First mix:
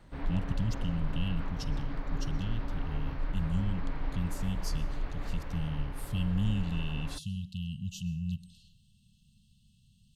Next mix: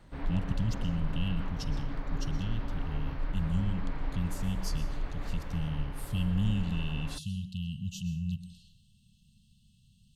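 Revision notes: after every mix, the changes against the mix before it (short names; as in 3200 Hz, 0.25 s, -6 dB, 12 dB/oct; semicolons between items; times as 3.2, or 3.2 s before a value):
speech: send +7.0 dB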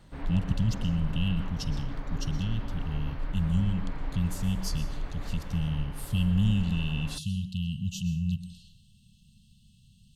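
speech +4.5 dB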